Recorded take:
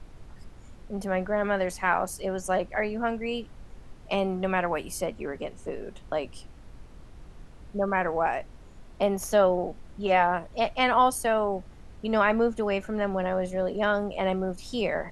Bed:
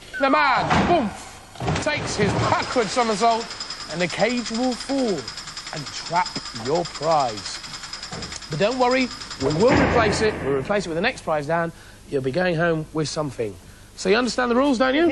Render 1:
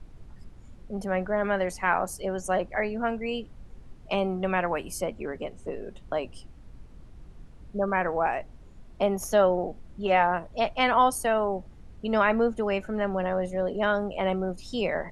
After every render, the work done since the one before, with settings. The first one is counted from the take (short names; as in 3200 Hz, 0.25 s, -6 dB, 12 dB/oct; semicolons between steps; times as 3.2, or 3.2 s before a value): denoiser 6 dB, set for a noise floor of -48 dBFS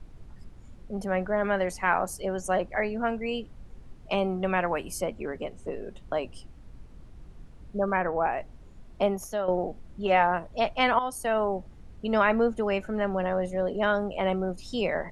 7.97–8.38 high shelf 3400 Hz -11.5 dB; 9.07–9.48 fade out quadratic, to -10 dB; 10.99–11.41 fade in, from -13.5 dB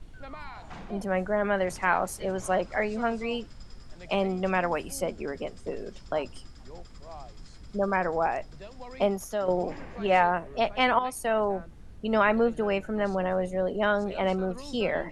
add bed -25.5 dB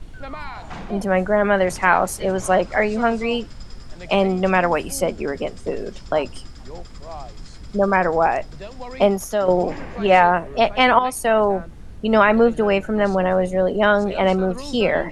gain +9 dB; limiter -2 dBFS, peak gain reduction 2.5 dB